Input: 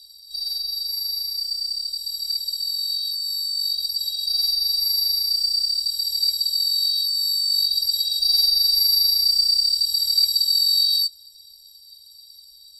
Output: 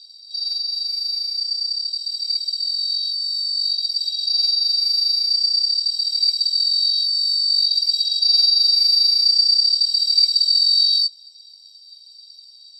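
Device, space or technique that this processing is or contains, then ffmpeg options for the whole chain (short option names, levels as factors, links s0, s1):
phone speaker on a table: -af "highpass=f=380:w=0.5412,highpass=f=380:w=1.3066,equalizer=f=490:t=q:w=4:g=7,equalizer=f=1000:t=q:w=4:g=7,equalizer=f=2600:t=q:w=4:g=8,equalizer=f=5100:t=q:w=4:g=5,lowpass=f=6800:w=0.5412,lowpass=f=6800:w=1.3066"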